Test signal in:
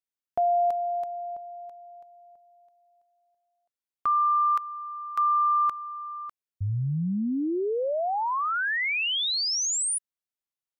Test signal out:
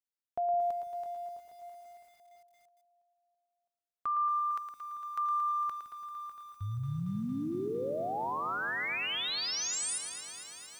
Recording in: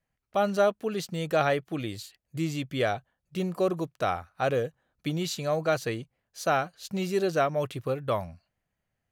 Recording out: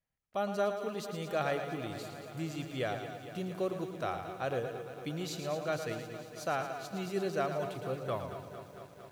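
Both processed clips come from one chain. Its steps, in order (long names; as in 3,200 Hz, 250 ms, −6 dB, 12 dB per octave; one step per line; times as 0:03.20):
echo with a time of its own for lows and highs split 320 Hz, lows 164 ms, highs 112 ms, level −8.5 dB
feedback echo at a low word length 228 ms, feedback 80%, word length 8 bits, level −12 dB
level −8.5 dB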